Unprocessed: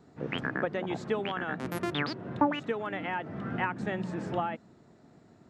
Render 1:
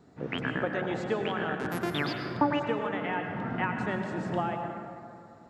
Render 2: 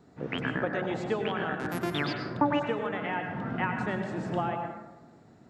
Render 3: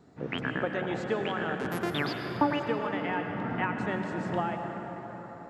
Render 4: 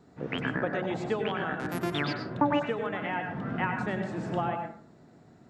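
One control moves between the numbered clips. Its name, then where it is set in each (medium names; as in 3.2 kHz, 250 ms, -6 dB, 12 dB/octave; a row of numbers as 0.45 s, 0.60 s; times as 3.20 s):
plate-style reverb, RT60: 2.4 s, 1.1 s, 5.3 s, 0.51 s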